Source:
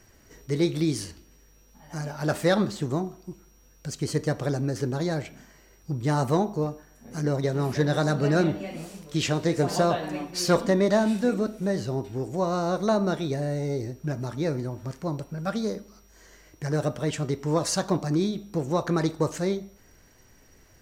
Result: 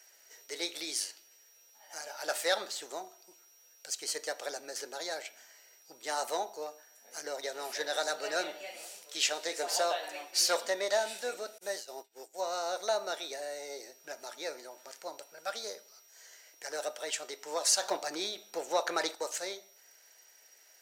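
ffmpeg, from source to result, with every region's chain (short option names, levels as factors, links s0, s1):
-filter_complex "[0:a]asettb=1/sr,asplit=3[s0][s1][s2];[s0]atrim=end=11.584[s3];[s1]atrim=start=11.58:end=12.41,asetpts=PTS-STARTPTS,afade=t=in:d=0.004:c=qsin,afade=t=out:st=0.826:d=0.004:c=qsin,highshelf=f=7400:g=8,agate=range=0.0224:threshold=0.0501:ratio=3:release=100:detection=peak[s4];[s2]atrim=start=12.406[s5];[s3][s4]acrossfade=d=0.004:c1=hsin:c2=qsin[s6];[s6][s5]acrossfade=d=0.004:c1=qsin:c2=hsin,asettb=1/sr,asplit=3[s7][s8][s9];[s7]atrim=end=17.824[s10];[s8]atrim=start=17.82:end=19.15,asetpts=PTS-STARTPTS,afade=t=in:d=0.004:c=qsin,afade=t=out:st=1.326:d=0.004:c=qsin,bass=f=250:g=1,treble=f=4000:g=-4,acontrast=31[s11];[s9]atrim=start=19.146[s12];[s10][s11]acrossfade=d=0.004:c1=hsin:c2=qsin[s13];[s13][s12]acrossfade=d=0.004:c1=qsin:c2=hsin,highpass=f=610:w=0.5412,highpass=f=610:w=1.3066,equalizer=f=1000:w=0.45:g=-8.5,bandreject=f=1100:w=6.4,volume=1.5"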